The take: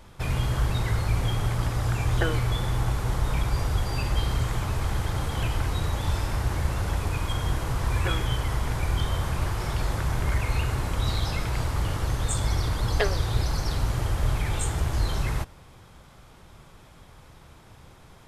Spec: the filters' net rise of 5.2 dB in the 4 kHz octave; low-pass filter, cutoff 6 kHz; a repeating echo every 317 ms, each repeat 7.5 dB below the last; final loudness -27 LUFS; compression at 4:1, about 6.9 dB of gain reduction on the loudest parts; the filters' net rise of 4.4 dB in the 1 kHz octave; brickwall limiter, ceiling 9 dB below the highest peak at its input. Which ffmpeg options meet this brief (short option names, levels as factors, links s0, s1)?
-af "lowpass=6000,equalizer=f=1000:t=o:g=5,equalizer=f=4000:t=o:g=7,acompressor=threshold=0.0447:ratio=4,alimiter=level_in=1.26:limit=0.0631:level=0:latency=1,volume=0.794,aecho=1:1:317|634|951|1268|1585:0.422|0.177|0.0744|0.0312|0.0131,volume=2.51"